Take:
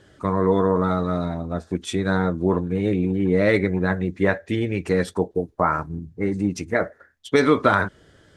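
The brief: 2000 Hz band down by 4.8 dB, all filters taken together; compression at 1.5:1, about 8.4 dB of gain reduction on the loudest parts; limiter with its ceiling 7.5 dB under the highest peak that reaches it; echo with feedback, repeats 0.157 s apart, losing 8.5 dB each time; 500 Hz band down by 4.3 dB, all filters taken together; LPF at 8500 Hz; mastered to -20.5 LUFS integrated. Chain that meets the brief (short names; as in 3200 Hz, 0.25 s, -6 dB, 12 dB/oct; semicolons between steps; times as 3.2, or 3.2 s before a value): LPF 8500 Hz; bell 500 Hz -5 dB; bell 2000 Hz -6 dB; compressor 1.5:1, threshold -40 dBFS; limiter -23 dBFS; feedback echo 0.157 s, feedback 38%, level -8.5 dB; gain +13.5 dB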